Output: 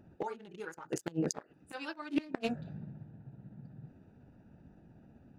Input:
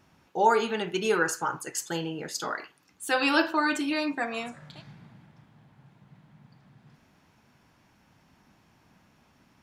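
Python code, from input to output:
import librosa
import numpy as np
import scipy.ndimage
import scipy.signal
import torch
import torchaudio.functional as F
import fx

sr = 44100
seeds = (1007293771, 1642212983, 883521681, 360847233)

y = fx.wiener(x, sr, points=41)
y = fx.gate_flip(y, sr, shuts_db=-24.0, range_db=-25)
y = fx.stretch_grains(y, sr, factor=0.56, grain_ms=126.0)
y = y * 10.0 ** (8.0 / 20.0)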